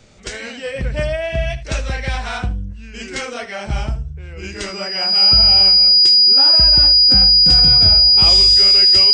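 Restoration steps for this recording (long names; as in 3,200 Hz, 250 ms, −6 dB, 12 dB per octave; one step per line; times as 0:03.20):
notch filter 4,900 Hz, Q 30
echo removal 75 ms −15 dB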